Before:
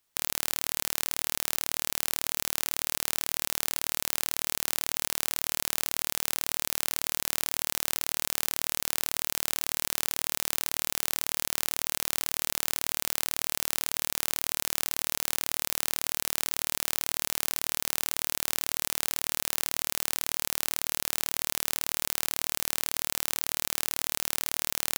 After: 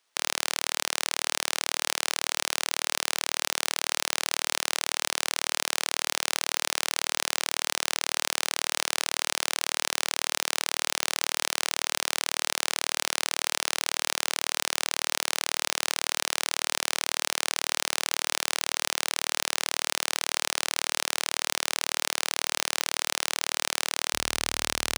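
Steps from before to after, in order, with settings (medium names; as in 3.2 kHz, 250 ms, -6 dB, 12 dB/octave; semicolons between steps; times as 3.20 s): high-pass 400 Hz 12 dB/octave, from 24.14 s 49 Hz; careless resampling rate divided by 3×, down filtered, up hold; trim +7 dB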